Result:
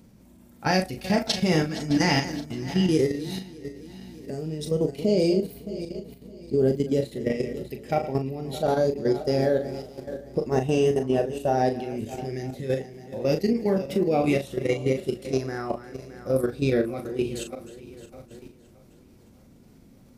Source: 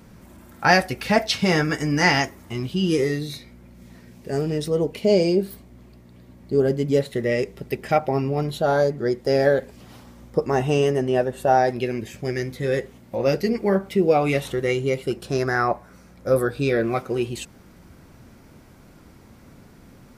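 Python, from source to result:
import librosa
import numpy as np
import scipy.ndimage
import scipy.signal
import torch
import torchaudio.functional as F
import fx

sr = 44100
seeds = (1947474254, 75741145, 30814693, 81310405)

y = fx.reverse_delay_fb(x, sr, ms=308, feedback_pct=63, wet_db=-12)
y = fx.peak_eq(y, sr, hz=1400.0, db=-8.5, octaves=1.6)
y = fx.level_steps(y, sr, step_db=11)
y = fx.peak_eq(y, sr, hz=240.0, db=3.0, octaves=0.76)
y = fx.doubler(y, sr, ms=38.0, db=-7.5)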